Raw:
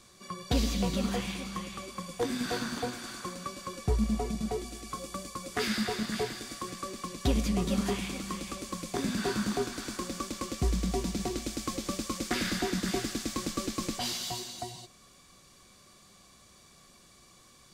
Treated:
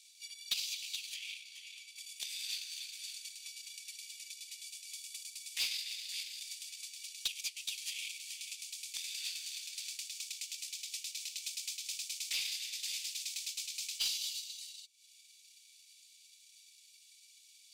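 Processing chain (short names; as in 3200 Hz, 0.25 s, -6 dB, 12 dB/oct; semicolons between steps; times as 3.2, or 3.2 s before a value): Chebyshev high-pass 2400 Hz, order 5; transient shaper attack +9 dB, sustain -11 dB; 1.14–1.96 high shelf 4600 Hz -7.5 dB; soft clip -26 dBFS, distortion -15 dB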